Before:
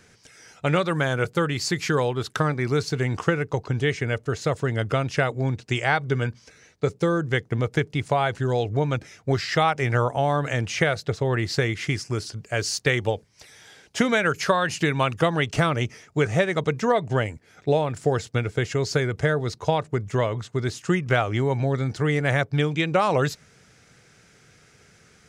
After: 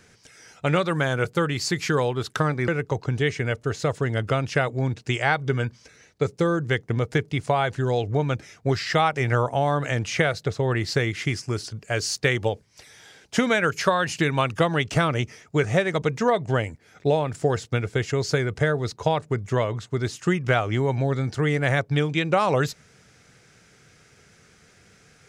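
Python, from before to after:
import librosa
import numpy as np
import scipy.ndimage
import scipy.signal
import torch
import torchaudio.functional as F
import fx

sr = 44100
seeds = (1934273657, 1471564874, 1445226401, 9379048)

y = fx.edit(x, sr, fx.cut(start_s=2.68, length_s=0.62), tone=tone)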